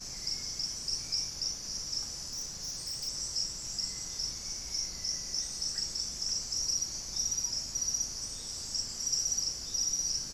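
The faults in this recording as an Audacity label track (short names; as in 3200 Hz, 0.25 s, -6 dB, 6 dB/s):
2.270000	3.090000	clipped -33.5 dBFS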